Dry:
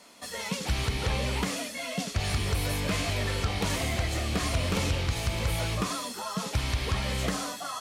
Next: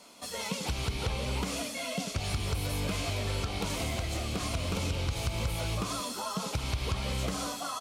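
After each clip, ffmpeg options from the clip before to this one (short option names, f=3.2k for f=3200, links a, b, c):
-filter_complex "[0:a]equalizer=f=1.8k:w=5.5:g=-9.5,acompressor=threshold=-29dB:ratio=6,asplit=2[a][b];[b]aecho=0:1:183:0.282[c];[a][c]amix=inputs=2:normalize=0"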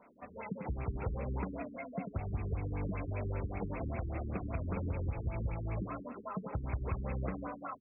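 -af "afftfilt=real='re*lt(b*sr/1024,400*pow(2700/400,0.5+0.5*sin(2*PI*5.1*pts/sr)))':imag='im*lt(b*sr/1024,400*pow(2700/400,0.5+0.5*sin(2*PI*5.1*pts/sr)))':win_size=1024:overlap=0.75,volume=-3.5dB"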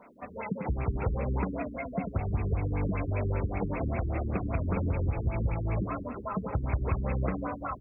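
-filter_complex "[0:a]asplit=2[a][b];[b]adelay=973,lowpass=f=2.3k:p=1,volume=-17.5dB,asplit=2[c][d];[d]adelay=973,lowpass=f=2.3k:p=1,volume=0.54,asplit=2[e][f];[f]adelay=973,lowpass=f=2.3k:p=1,volume=0.54,asplit=2[g][h];[h]adelay=973,lowpass=f=2.3k:p=1,volume=0.54,asplit=2[i][j];[j]adelay=973,lowpass=f=2.3k:p=1,volume=0.54[k];[a][c][e][g][i][k]amix=inputs=6:normalize=0,volume=7dB"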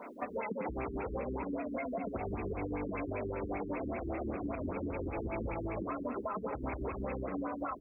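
-af "lowshelf=f=200:t=q:w=1.5:g=-10.5,alimiter=level_in=5dB:limit=-24dB:level=0:latency=1:release=127,volume=-5dB,acompressor=threshold=-41dB:ratio=6,volume=7dB"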